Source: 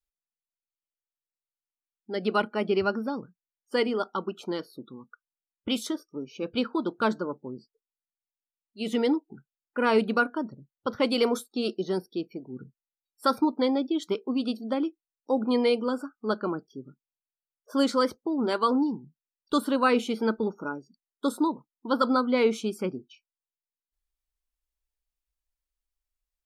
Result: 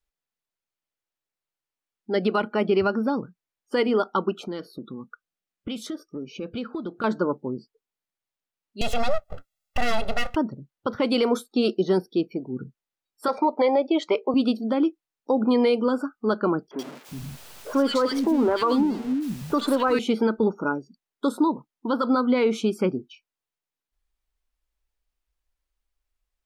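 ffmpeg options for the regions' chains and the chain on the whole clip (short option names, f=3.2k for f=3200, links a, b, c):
-filter_complex "[0:a]asettb=1/sr,asplit=3[a][b][c];[a]atrim=end=4.424[d];[b]atrim=start=4.42:end=7.04,asetpts=PTS-STARTPTS,afade=t=in:d=0.004:c=qsin,afade=t=out:st=2.616:d=0.004:c=qsin,equalizer=f=190:t=o:w=0.37:g=5,acompressor=threshold=-39dB:ratio=3:attack=3.2:release=140:knee=1:detection=peak,bandreject=f=950:w=5.8[e];[c]atrim=start=7.036[f];[d][e]acrossfade=d=0.004:c1=hsin:c2=qsin[g];[g][f]acrossfade=d=0.004:c1=qsin:c2=hsin,asettb=1/sr,asplit=3[h][i][j];[h]atrim=end=8.814[k];[i]atrim=start=8.81:end=10.36,asetpts=PTS-STARTPTS,afade=t=in:d=0.004:c=qsin,afade=t=out:st=1.546:d=0.004:c=qsin,aeval=exprs='abs(val(0))':c=same,highshelf=f=3.4k:g=8.5,aecho=1:1:1.5:0.85,atrim=end_sample=68355[l];[j]atrim=start=10.356[m];[k][l]acrossfade=d=0.004:c1=hsin:c2=qsin[n];[n][m]acrossfade=d=0.004:c1=qsin:c2=hsin,asettb=1/sr,asplit=3[o][p][q];[o]atrim=end=13.284[r];[p]atrim=start=13.28:end=14.34,asetpts=PTS-STARTPTS,afade=t=in:d=0.004:c=qsin,afade=t=out:st=1.056:d=0.004:c=qsin,acontrast=23,highpass=500,equalizer=f=590:t=q:w=4:g=9,equalizer=f=870:t=q:w=4:g=4,equalizer=f=1.5k:t=q:w=4:g=-10,equalizer=f=2.2k:t=q:w=4:g=7,equalizer=f=3.6k:t=q:w=4:g=-8,equalizer=f=5.5k:t=q:w=4:g=-6,lowpass=f=6.2k:w=0.5412,lowpass=f=6.2k:w=1.3066[s];[q]atrim=start=14.336[t];[r][s]acrossfade=d=0.004:c1=hsin:c2=qsin[u];[u][t]acrossfade=d=0.004:c1=qsin:c2=hsin,asettb=1/sr,asplit=3[v][w][x];[v]atrim=end=16.714[y];[w]atrim=start=16.71:end=19.99,asetpts=PTS-STARTPTS,afade=t=in:d=0.004:c=qsin,afade=t=out:st=3.276:d=0.004:c=qsin,aeval=exprs='val(0)+0.5*0.0133*sgn(val(0))':c=same,acrossover=split=230|1700[z][aa][ab];[ab]adelay=80[ac];[z]adelay=370[ad];[ad][aa][ac]amix=inputs=3:normalize=0,atrim=end_sample=144648[ae];[x]atrim=start=19.986[af];[y][ae]acrossfade=d=0.004:c1=hsin:c2=qsin[ag];[ag][af]acrossfade=d=0.004:c1=qsin:c2=hsin,highshelf=f=4.9k:g=-9,alimiter=limit=-20.5dB:level=0:latency=1:release=141,volume=8dB"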